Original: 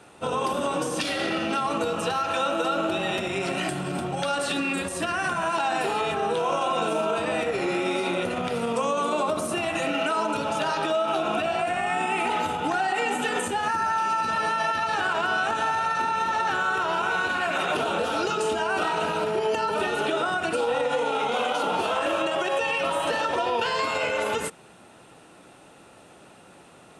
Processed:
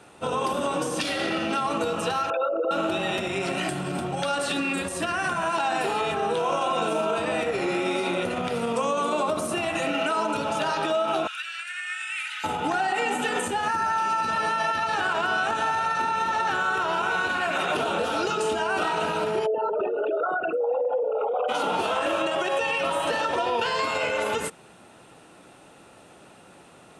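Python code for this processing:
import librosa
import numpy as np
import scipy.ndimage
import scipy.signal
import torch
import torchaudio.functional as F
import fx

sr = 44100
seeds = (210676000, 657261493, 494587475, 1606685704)

y = fx.envelope_sharpen(x, sr, power=3.0, at=(2.3, 2.71))
y = fx.ellip_highpass(y, sr, hz=1500.0, order=4, stop_db=70, at=(11.27, 12.44))
y = fx.envelope_sharpen(y, sr, power=3.0, at=(19.45, 21.48), fade=0.02)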